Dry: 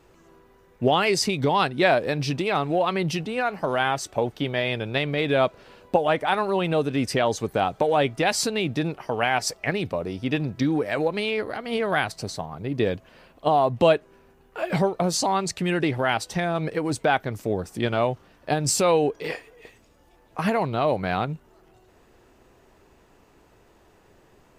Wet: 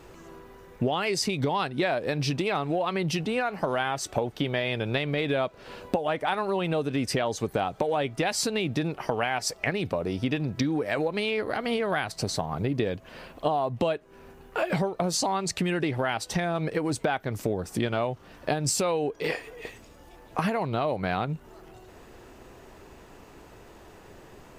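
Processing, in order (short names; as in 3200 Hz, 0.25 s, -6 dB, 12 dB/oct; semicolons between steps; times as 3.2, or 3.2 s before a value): compressor 6:1, threshold -32 dBFS, peak gain reduction 17.5 dB; gain +7.5 dB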